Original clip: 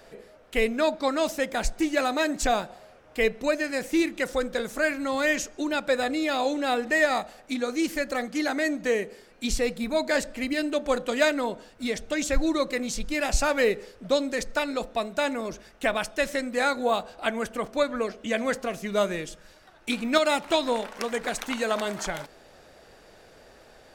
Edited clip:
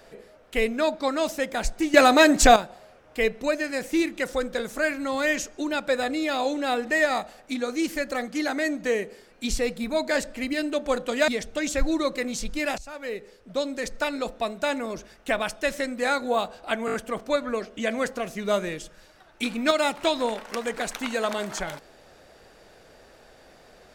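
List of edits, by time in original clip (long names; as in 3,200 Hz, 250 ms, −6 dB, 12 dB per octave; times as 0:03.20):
0:01.94–0:02.56: clip gain +9.5 dB
0:11.28–0:11.83: remove
0:13.33–0:14.63: fade in, from −22 dB
0:17.41: stutter 0.02 s, 5 plays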